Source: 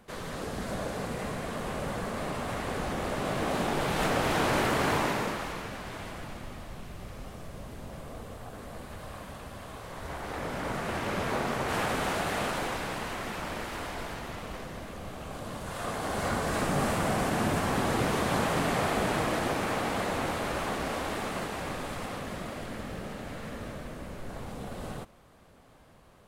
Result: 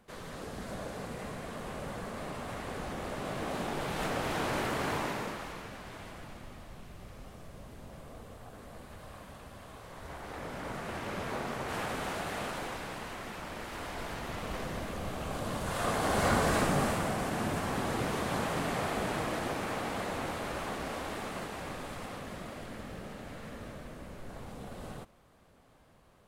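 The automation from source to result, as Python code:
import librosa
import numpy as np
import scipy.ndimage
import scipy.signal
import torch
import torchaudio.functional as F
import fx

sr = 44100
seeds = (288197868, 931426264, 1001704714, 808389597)

y = fx.gain(x, sr, db=fx.line((13.51, -6.0), (14.67, 3.0), (16.44, 3.0), (17.15, -5.0)))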